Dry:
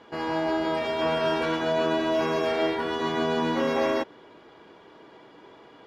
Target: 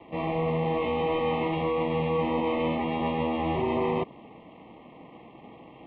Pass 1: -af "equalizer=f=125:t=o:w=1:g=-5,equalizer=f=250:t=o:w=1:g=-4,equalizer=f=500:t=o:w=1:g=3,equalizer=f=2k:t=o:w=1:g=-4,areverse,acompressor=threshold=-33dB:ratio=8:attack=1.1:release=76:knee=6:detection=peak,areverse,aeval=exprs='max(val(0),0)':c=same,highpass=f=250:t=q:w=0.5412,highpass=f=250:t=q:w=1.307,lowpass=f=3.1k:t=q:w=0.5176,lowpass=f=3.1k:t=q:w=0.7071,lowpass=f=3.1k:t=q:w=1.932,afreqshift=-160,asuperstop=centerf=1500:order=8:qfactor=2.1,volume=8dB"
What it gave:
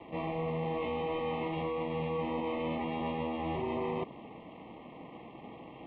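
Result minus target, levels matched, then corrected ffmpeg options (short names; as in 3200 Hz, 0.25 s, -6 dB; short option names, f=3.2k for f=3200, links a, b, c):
compressor: peak gain reduction +8 dB
-af "equalizer=f=125:t=o:w=1:g=-5,equalizer=f=250:t=o:w=1:g=-4,equalizer=f=500:t=o:w=1:g=3,equalizer=f=2k:t=o:w=1:g=-4,areverse,acompressor=threshold=-24dB:ratio=8:attack=1.1:release=76:knee=6:detection=peak,areverse,aeval=exprs='max(val(0),0)':c=same,highpass=f=250:t=q:w=0.5412,highpass=f=250:t=q:w=1.307,lowpass=f=3.1k:t=q:w=0.5176,lowpass=f=3.1k:t=q:w=0.7071,lowpass=f=3.1k:t=q:w=1.932,afreqshift=-160,asuperstop=centerf=1500:order=8:qfactor=2.1,volume=8dB"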